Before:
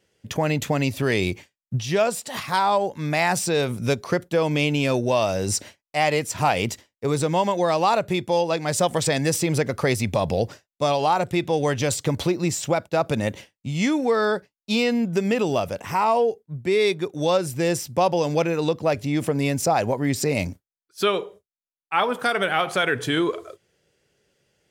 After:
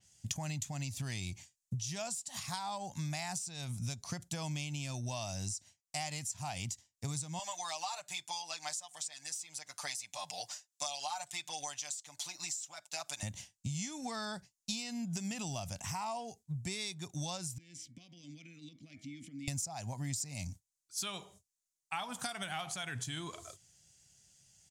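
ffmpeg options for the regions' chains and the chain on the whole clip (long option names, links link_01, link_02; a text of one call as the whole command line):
ffmpeg -i in.wav -filter_complex "[0:a]asettb=1/sr,asplit=3[link_01][link_02][link_03];[link_01]atrim=end=7.394[link_04];[link_02]atrim=start=7.39:end=13.23,asetpts=PTS-STARTPTS,afade=type=in:duration=0.004:curve=qsin,afade=type=out:start_time=5.836:duration=0.004:curve=qsin,highpass=780,aecho=1:1:6.7:0.89,atrim=end_sample=257544[link_05];[link_03]atrim=start=13.226[link_06];[link_04][link_05]acrossfade=duration=0.004:curve1=hsin:curve2=qsin[link_07];[link_07][link_06]acrossfade=duration=0.004:curve1=qsin:curve2=hsin,asettb=1/sr,asplit=3[link_08][link_09][link_10];[link_08]atrim=end=17.584[link_11];[link_09]atrim=start=17.58:end=19.48,asetpts=PTS-STARTPTS,afade=type=in:duration=0.004:curve=qsin,afade=type=out:start_time=1.896:duration=0.004:curve=qsin,bandreject=frequency=105.8:width_type=h:width=4,bandreject=frequency=211.6:width_type=h:width=4,bandreject=frequency=317.4:width_type=h:width=4,bandreject=frequency=423.2:width_type=h:width=4,bandreject=frequency=529:width_type=h:width=4,bandreject=frequency=634.8:width_type=h:width=4,bandreject=frequency=740.6:width_type=h:width=4,bandreject=frequency=846.4:width_type=h:width=4,bandreject=frequency=952.2:width_type=h:width=4,bandreject=frequency=1058:width_type=h:width=4,bandreject=frequency=1163.8:width_type=h:width=4,bandreject=frequency=1269.6:width_type=h:width=4,bandreject=frequency=1375.4:width_type=h:width=4,bandreject=frequency=1481.2:width_type=h:width=4,bandreject=frequency=1587:width_type=h:width=4,bandreject=frequency=1692.8:width_type=h:width=4,bandreject=frequency=1798.6:width_type=h:width=4,bandreject=frequency=1904.4:width_type=h:width=4,bandreject=frequency=2010.2:width_type=h:width=4,bandreject=frequency=2116:width_type=h:width=4,bandreject=frequency=2221.8:width_type=h:width=4,bandreject=frequency=2327.6:width_type=h:width=4,acompressor=threshold=-25dB:ratio=12:attack=3.2:release=140:knee=1:detection=peak,asplit=3[link_12][link_13][link_14];[link_12]bandpass=frequency=270:width_type=q:width=8,volume=0dB[link_15];[link_13]bandpass=frequency=2290:width_type=q:width=8,volume=-6dB[link_16];[link_14]bandpass=frequency=3010:width_type=q:width=8,volume=-9dB[link_17];[link_15][link_16][link_17]amix=inputs=3:normalize=0[link_18];[link_10]atrim=start=19.476[link_19];[link_11][link_18]acrossfade=duration=0.004:curve1=hsin:curve2=qsin[link_20];[link_20][link_19]acrossfade=duration=0.004:curve1=qsin:curve2=hsin,firequalizer=gain_entry='entry(120,0);entry(450,-26);entry(710,-7);entry(1300,-12);entry(6800,13);entry(14000,-1)':delay=0.05:min_phase=1,acompressor=threshold=-37dB:ratio=10,adynamicequalizer=threshold=0.002:dfrequency=4700:dqfactor=0.7:tfrequency=4700:tqfactor=0.7:attack=5:release=100:ratio=0.375:range=2.5:mode=cutabove:tftype=highshelf,volume=1.5dB" out.wav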